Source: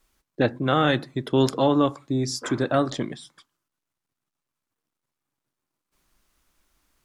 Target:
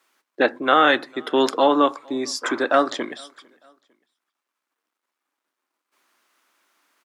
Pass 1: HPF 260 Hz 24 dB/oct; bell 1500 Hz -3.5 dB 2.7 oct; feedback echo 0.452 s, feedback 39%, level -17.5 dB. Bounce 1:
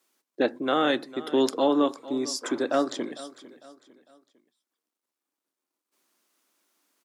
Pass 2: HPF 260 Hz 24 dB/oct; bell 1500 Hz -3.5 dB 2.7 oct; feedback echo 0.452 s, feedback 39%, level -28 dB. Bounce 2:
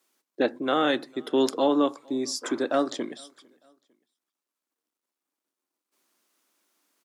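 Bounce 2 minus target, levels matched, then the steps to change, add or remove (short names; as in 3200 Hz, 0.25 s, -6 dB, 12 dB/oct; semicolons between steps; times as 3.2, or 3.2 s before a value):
2000 Hz band -5.5 dB
change: bell 1500 Hz +8.5 dB 2.7 oct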